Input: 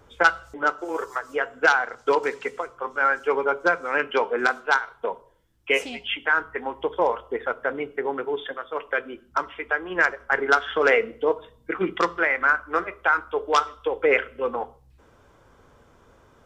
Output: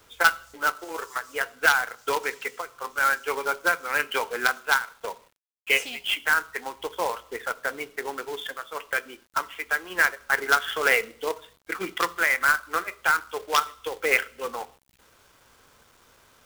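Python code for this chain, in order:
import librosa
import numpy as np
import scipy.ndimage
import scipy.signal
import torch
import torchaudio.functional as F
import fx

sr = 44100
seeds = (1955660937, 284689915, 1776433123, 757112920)

y = fx.tilt_shelf(x, sr, db=-7.0, hz=1100.0)
y = fx.quant_companded(y, sr, bits=4)
y = y * librosa.db_to_amplitude(-3.0)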